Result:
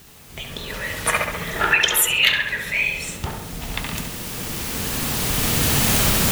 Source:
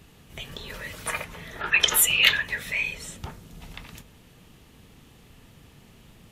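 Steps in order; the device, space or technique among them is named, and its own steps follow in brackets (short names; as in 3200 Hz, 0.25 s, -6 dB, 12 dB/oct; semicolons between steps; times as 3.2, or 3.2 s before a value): cheap recorder with automatic gain (white noise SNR 21 dB; recorder AGC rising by 8.2 dB/s); tape echo 68 ms, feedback 67%, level -4.5 dB, low-pass 3400 Hz; gain +1 dB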